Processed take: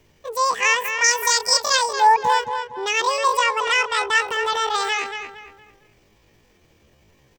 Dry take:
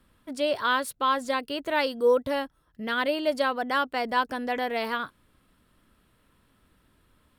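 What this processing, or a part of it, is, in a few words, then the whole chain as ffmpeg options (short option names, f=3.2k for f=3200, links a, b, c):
chipmunk voice: -filter_complex "[0:a]asettb=1/sr,asplit=3[a][b][c];[a]atrim=end=1.064[d];[b]atrim=start=1.06:end=1.78,asetpts=PTS-STARTPTS,afade=t=in:d=0.004:c=qsin,afade=t=out:st=0.716:d=0.004:c=qsin,highshelf=f=2.2k:t=q:w=3:g=8.5[e];[c]atrim=start=1.776[f];[d][e]acrossfade=d=0.004:c1=hsin:c2=qsin[g];[g][f]acrossfade=d=0.004:c1=qsin:c2=hsin,asettb=1/sr,asplit=3[h][i][j];[h]atrim=end=3.394[k];[i]atrim=start=3.39:end=4.2,asetpts=PTS-STARTPTS,afade=t=in:d=0.004:c=qsin,afade=t=out:st=0.806:d=0.004:c=qsin,lowpass=f=7.3k:w=0.5412,lowpass=f=7.3k:w=1.3066[l];[j]atrim=start=4.196[m];[k][l]acrossfade=d=0.004:c1=hsin:c2=qsin[n];[n][m]acrossfade=d=0.004:c1=qsin:c2=hsin,asplit=2[o][p];[p]adelay=229,lowpass=f=1.8k:p=1,volume=-6dB,asplit=2[q][r];[r]adelay=229,lowpass=f=1.8k:p=1,volume=0.37,asplit=2[s][t];[t]adelay=229,lowpass=f=1.8k:p=1,volume=0.37,asplit=2[u][v];[v]adelay=229,lowpass=f=1.8k:p=1,volume=0.37[w];[o][q][s][u][w]amix=inputs=5:normalize=0,asetrate=78577,aresample=44100,atempo=0.561231,volume=6dB"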